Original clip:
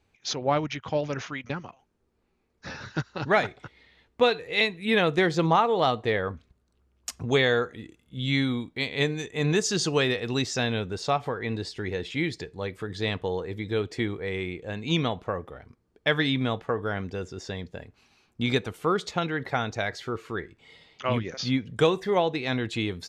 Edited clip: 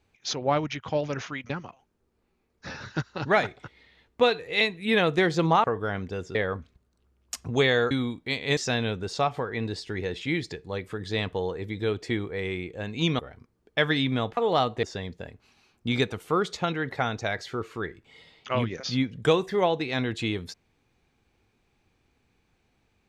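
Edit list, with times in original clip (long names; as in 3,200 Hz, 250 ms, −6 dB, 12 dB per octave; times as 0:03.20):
0:05.64–0:06.10: swap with 0:16.66–0:17.37
0:07.66–0:08.41: remove
0:09.07–0:10.46: remove
0:15.08–0:15.48: remove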